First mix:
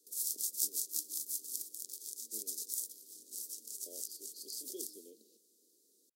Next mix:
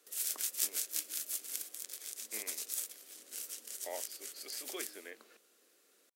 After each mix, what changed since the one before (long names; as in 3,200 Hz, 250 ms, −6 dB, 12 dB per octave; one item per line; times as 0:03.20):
master: remove inverse Chebyshev band-stop filter 920–2,100 Hz, stop band 60 dB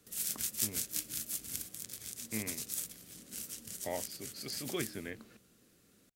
speech +4.0 dB
master: remove high-pass filter 380 Hz 24 dB per octave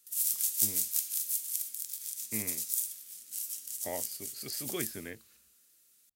background: add first-order pre-emphasis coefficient 0.97
reverb: on, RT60 1.9 s